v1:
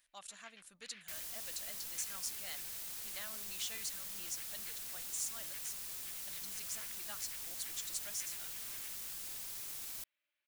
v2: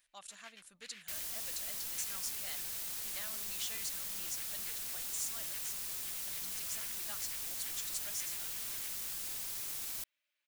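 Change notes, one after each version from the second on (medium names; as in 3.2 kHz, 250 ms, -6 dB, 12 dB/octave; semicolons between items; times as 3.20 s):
first sound: remove distance through air 170 m; second sound +4.0 dB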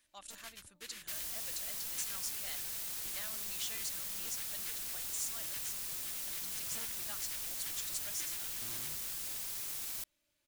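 first sound: remove band-pass filter 2.2 kHz, Q 1.3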